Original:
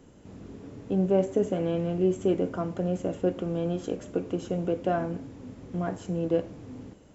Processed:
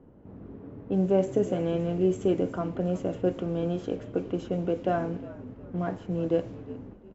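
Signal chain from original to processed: low-pass opened by the level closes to 1000 Hz, open at -21.5 dBFS; frequency-shifting echo 0.359 s, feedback 33%, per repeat -60 Hz, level -17 dB

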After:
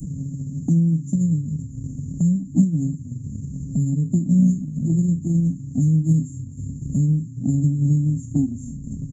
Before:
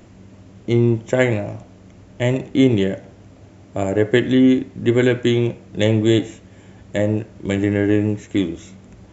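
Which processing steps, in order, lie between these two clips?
spectral trails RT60 0.30 s; vibrato 6.2 Hz 5.7 cents; formant-preserving pitch shift +6 st; downsampling 22050 Hz; Chebyshev band-stop 260–6900 Hz, order 5; bell 5100 Hz +4 dB 0.35 oct; on a send: frequency-shifting echo 0.251 s, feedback 53%, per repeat -30 Hz, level -18.5 dB; on the sum: transient shaper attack +5 dB, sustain -3 dB; three-band squash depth 70%; gain +2 dB

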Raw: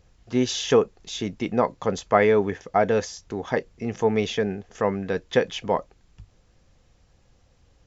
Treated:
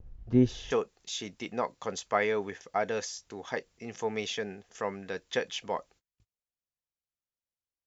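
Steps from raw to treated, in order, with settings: tilt -4 dB/oct, from 0.7 s +2.5 dB/oct; gate -49 dBFS, range -31 dB; gain -8 dB

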